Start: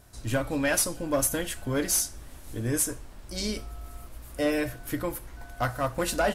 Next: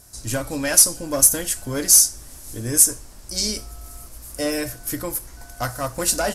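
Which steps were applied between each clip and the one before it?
high-order bell 7.7 kHz +12 dB; trim +1.5 dB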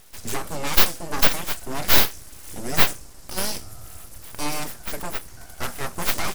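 full-wave rectifier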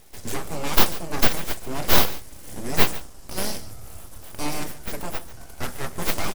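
delay 143 ms -16.5 dB; in parallel at -5 dB: decimation with a swept rate 26×, swing 60% 0.9 Hz; on the sum: trim -3 dB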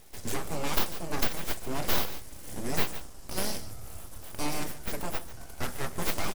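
compression 3:1, threshold -20 dBFS, peak gain reduction 9.5 dB; trim -2.5 dB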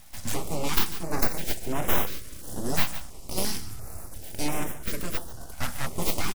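speakerphone echo 350 ms, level -27 dB; step-sequenced notch 2.9 Hz 410–4500 Hz; trim +4 dB

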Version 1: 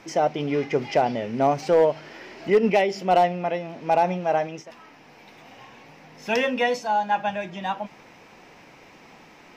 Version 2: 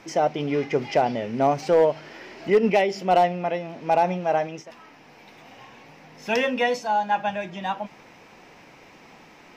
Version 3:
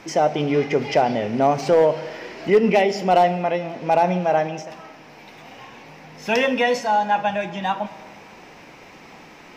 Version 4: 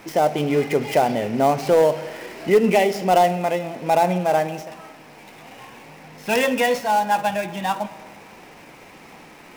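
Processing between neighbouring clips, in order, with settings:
no audible change
in parallel at -2.5 dB: peak limiter -18 dBFS, peak gain reduction 7.5 dB; on the sum: plate-style reverb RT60 1.5 s, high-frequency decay 0.75×, DRR 12 dB
dead-time distortion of 0.071 ms

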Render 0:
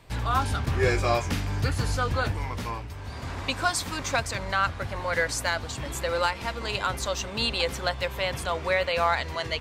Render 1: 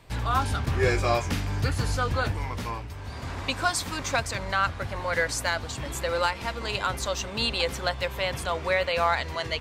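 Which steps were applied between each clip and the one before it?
no audible change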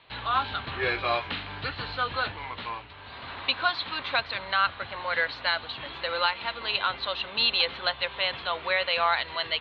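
rippled Chebyshev low-pass 4.2 kHz, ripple 3 dB; tilt EQ +3.5 dB/octave

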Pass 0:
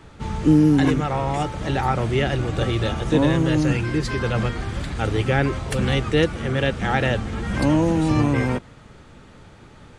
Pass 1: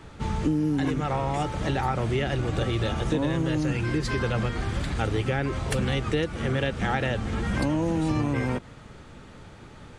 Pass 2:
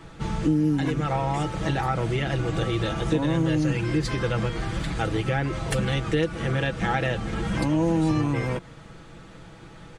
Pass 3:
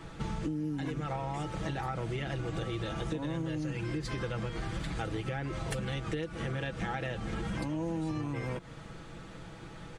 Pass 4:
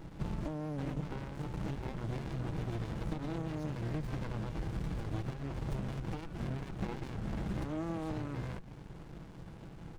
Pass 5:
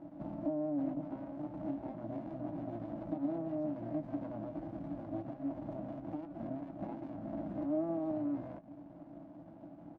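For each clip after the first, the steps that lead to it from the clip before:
compression 6:1, threshold -22 dBFS, peak gain reduction 11 dB
comb 6.1 ms, depth 54%
compression 5:1, threshold -31 dBFS, peak gain reduction 12.5 dB; trim -1.5 dB
sliding maximum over 65 samples
two resonant band-passes 430 Hz, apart 1.1 oct; doubling 18 ms -11.5 dB; trim +9 dB

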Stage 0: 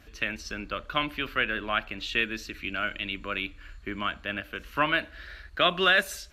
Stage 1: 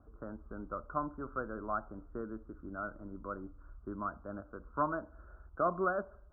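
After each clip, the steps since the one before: steep low-pass 1.4 kHz 96 dB/octave; trim -5.5 dB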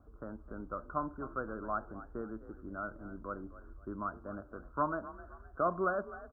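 frequency-shifting echo 259 ms, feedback 37%, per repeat +40 Hz, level -15.5 dB

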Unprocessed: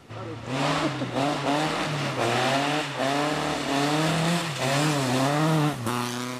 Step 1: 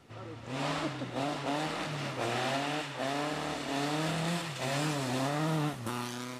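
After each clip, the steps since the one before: band-stop 1.1 kHz, Q 29; trim -8.5 dB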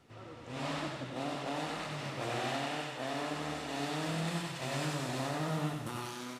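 feedback delay 93 ms, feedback 46%, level -4.5 dB; trim -5 dB

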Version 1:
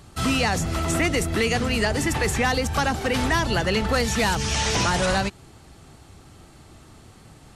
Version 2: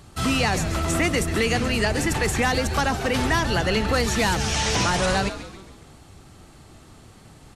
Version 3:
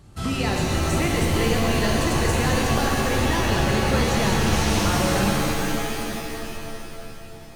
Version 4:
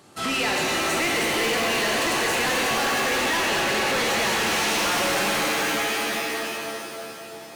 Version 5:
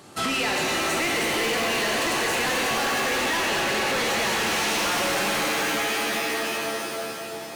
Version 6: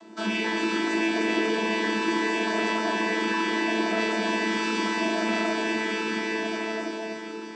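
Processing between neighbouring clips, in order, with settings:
frequency-shifting echo 137 ms, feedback 48%, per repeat -130 Hz, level -11.5 dB
bass shelf 470 Hz +7 dB; pitch-shifted reverb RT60 3.1 s, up +7 st, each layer -2 dB, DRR -1 dB; trim -8 dB
dynamic bell 2.3 kHz, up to +6 dB, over -42 dBFS, Q 1; high-pass 340 Hz 12 dB/octave; saturation -26.5 dBFS, distortion -8 dB; trim +6 dB
compression, threshold -28 dBFS, peak gain reduction 6 dB; trim +4.5 dB
vocoder on a held chord bare fifth, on A3; high-pass 190 Hz; simulated room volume 130 m³, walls furnished, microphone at 0.86 m

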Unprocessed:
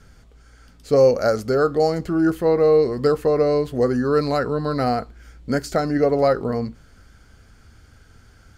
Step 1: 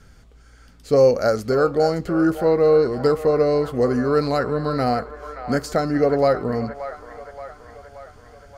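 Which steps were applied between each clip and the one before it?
feedback echo behind a band-pass 576 ms, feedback 58%, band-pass 1.3 kHz, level -9 dB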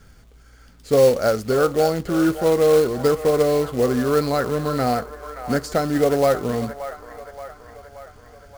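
short-mantissa float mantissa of 2-bit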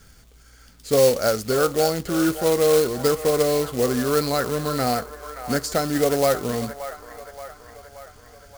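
treble shelf 2.9 kHz +9.5 dB; trim -2.5 dB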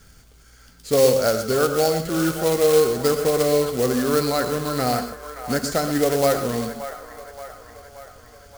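gated-style reverb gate 150 ms rising, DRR 8 dB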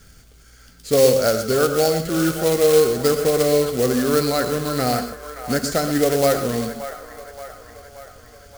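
peaking EQ 950 Hz -5 dB 0.51 oct; trim +2 dB

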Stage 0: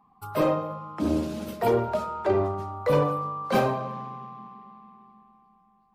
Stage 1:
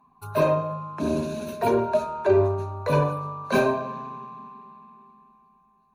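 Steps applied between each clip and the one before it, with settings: rippled EQ curve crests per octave 1.5, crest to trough 12 dB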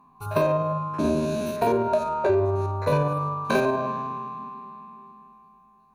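spectrogram pixelated in time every 50 ms; compression 6:1, threshold -24 dBFS, peak gain reduction 8.5 dB; trim +5.5 dB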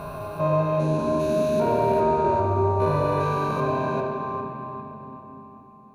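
spectrogram pixelated in time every 400 ms; simulated room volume 190 m³, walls hard, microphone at 0.4 m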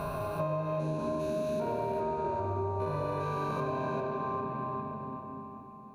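compression 6:1, threshold -30 dBFS, peak gain reduction 12 dB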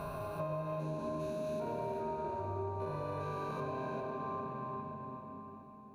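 echo that smears into a reverb 460 ms, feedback 42%, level -12.5 dB; trim -6 dB

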